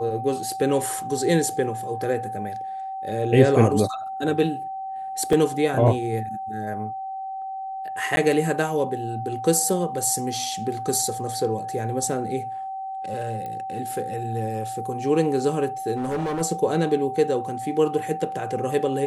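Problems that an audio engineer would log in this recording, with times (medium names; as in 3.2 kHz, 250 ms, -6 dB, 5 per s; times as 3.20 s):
whine 770 Hz -29 dBFS
5.33 s: dropout 2.1 ms
8.16–8.17 s: dropout 10 ms
13.46 s: pop -22 dBFS
15.96–16.42 s: clipped -22.5 dBFS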